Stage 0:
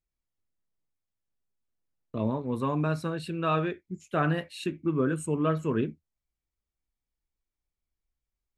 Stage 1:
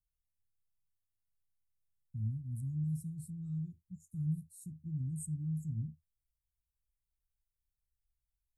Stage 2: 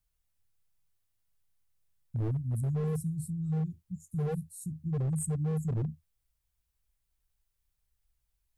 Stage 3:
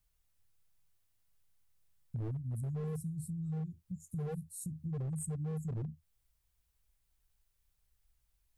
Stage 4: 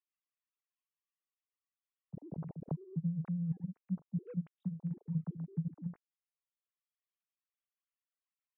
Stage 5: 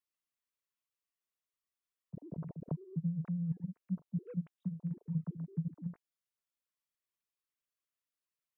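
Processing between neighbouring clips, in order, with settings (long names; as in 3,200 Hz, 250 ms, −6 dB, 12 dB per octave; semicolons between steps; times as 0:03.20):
inverse Chebyshev band-stop filter 430–3,200 Hz, stop band 60 dB
wave folding −34.5 dBFS; level +8.5 dB
downward compressor 2.5 to 1, threshold −43 dBFS, peak gain reduction 9.5 dB; level +2.5 dB
three sine waves on the formant tracks; transient designer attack +4 dB, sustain −4 dB; level −2 dB
Butterworth band-reject 800 Hz, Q 6.7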